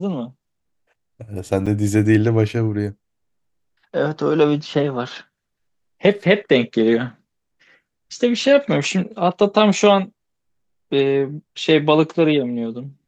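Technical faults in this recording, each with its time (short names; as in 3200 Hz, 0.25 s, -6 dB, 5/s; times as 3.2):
1.66–1.67 gap 6 ms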